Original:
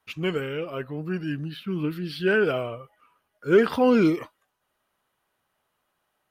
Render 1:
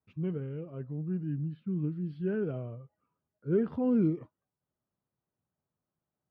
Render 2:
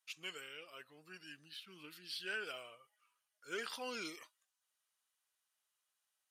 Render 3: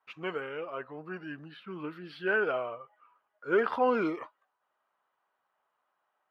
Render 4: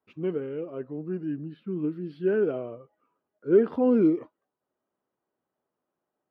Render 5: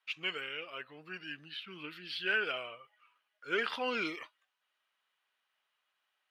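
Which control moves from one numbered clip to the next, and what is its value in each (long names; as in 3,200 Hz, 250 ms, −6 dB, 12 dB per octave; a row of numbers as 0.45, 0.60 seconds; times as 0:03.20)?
resonant band-pass, frequency: 130, 7,300, 1,000, 320, 2,800 Hertz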